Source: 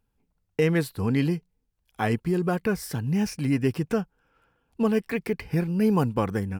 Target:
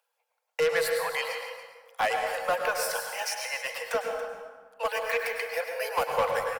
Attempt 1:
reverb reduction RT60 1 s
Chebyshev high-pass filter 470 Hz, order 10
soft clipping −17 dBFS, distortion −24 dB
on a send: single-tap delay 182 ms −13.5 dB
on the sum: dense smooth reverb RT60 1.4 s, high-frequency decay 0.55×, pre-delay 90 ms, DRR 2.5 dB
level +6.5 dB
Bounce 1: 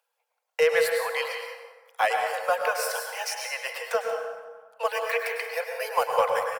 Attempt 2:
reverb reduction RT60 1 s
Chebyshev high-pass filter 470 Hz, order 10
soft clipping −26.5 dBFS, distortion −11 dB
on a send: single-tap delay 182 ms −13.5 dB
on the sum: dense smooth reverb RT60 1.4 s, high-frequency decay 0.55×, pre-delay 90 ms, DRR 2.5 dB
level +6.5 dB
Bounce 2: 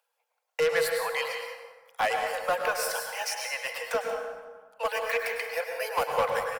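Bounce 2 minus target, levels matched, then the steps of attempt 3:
echo 99 ms early
reverb reduction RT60 1 s
Chebyshev high-pass filter 470 Hz, order 10
soft clipping −26.5 dBFS, distortion −11 dB
on a send: single-tap delay 281 ms −13.5 dB
on the sum: dense smooth reverb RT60 1.4 s, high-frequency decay 0.55×, pre-delay 90 ms, DRR 2.5 dB
level +6.5 dB

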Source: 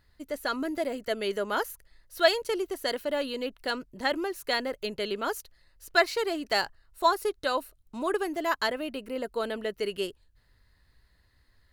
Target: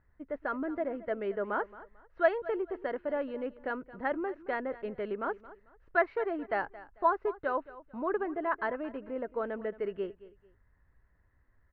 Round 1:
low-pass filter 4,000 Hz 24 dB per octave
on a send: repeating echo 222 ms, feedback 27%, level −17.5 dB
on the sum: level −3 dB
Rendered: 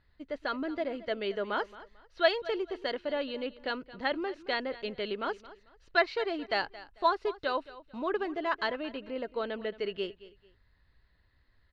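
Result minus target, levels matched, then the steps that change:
4,000 Hz band +19.5 dB
change: low-pass filter 1,800 Hz 24 dB per octave

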